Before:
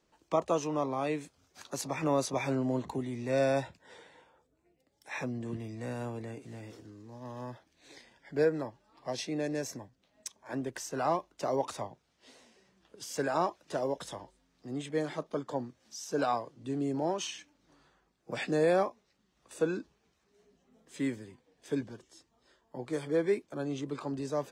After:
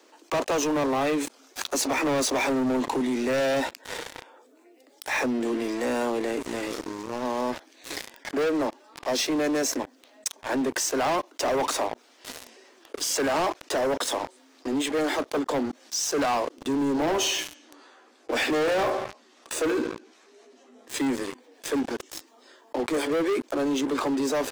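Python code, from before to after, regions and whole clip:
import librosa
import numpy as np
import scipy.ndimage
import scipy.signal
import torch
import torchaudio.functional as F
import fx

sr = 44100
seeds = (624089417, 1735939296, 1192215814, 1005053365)

y = fx.chain(x, sr, fx.lowpass(hz=10000.0, slope=12),
    fx.doubler(ms=13.0, db=-7.0),
    fx.echo_feedback(ms=72, feedback_pct=45, wet_db=-13), at=(16.94, 20.98))
y = scipy.signal.sosfilt(scipy.signal.butter(16, 240.0, 'highpass', fs=sr, output='sos'), y)
y = fx.leveller(y, sr, passes=5)
y = fx.env_flatten(y, sr, amount_pct=50)
y = F.gain(torch.from_numpy(y), -7.0).numpy()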